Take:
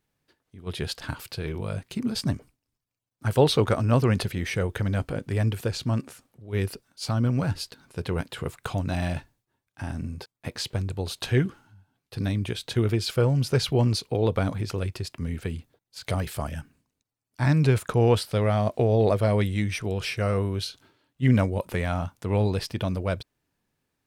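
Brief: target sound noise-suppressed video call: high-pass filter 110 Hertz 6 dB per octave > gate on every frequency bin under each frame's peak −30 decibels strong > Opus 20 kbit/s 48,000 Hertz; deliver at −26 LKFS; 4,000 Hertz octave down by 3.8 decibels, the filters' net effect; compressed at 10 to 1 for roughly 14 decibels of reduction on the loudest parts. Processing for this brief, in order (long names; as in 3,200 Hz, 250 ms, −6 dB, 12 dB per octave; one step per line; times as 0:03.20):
parametric band 4,000 Hz −4.5 dB
downward compressor 10 to 1, threshold −29 dBFS
high-pass filter 110 Hz 6 dB per octave
gate on every frequency bin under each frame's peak −30 dB strong
level +11 dB
Opus 20 kbit/s 48,000 Hz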